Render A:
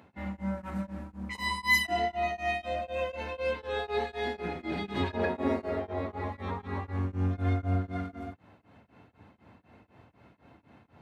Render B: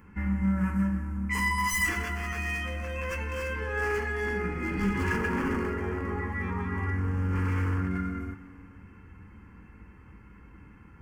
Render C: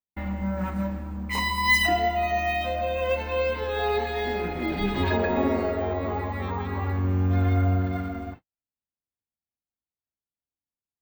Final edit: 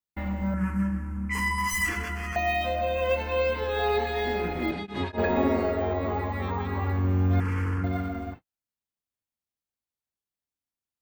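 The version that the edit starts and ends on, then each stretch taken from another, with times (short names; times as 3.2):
C
0.54–2.36 from B
4.71–5.18 from A
7.4–7.84 from B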